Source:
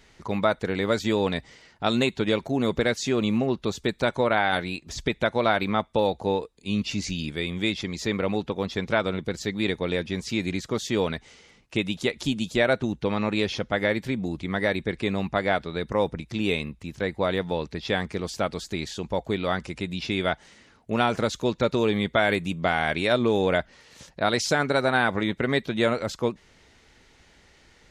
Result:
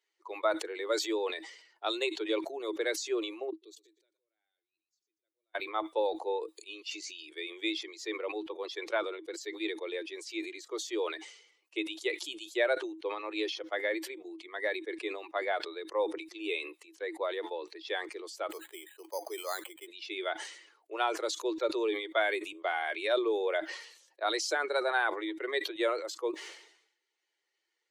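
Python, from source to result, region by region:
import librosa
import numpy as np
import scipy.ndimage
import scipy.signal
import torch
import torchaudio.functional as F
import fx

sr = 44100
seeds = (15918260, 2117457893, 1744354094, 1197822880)

y = fx.chain(x, sr, fx.tone_stack(knobs='10-0-1'),
    fx.level_steps(step_db=19),
    fx.echo_feedback(ms=117, feedback_pct=21, wet_db=-13.0), at=(3.5, 5.55))
y = fx.chain(y, sr, fx.bandpass_edges(low_hz=390.0, high_hz=4200.0),
    fx.resample_bad(factor=8, down='filtered', up='hold'), at=(18.5, 19.87))
y = fx.bin_expand(y, sr, power=1.5)
y = scipy.signal.sosfilt(scipy.signal.cheby1(8, 1.0, 320.0, 'highpass', fs=sr, output='sos'), y)
y = fx.sustainer(y, sr, db_per_s=77.0)
y = F.gain(torch.from_numpy(y), -4.0).numpy()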